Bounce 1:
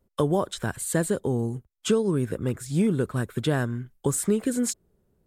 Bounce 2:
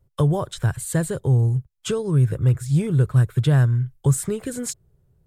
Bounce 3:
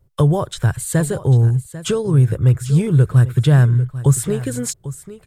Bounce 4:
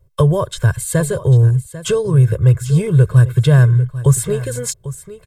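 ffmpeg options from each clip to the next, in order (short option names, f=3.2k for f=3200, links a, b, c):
-af "lowshelf=f=170:t=q:w=3:g=7.5"
-af "aecho=1:1:795:0.178,volume=4.5dB"
-af "aecho=1:1:1.9:0.76"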